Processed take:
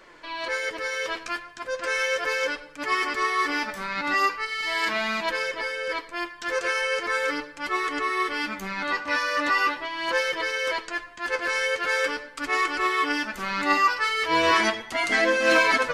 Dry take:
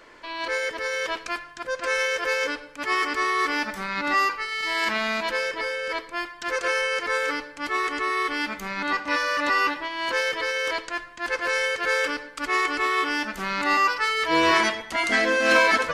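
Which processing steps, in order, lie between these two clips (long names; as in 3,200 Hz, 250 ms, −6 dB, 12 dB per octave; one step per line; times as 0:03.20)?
flanger 0.39 Hz, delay 5.2 ms, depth 7.3 ms, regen +38%
level +3 dB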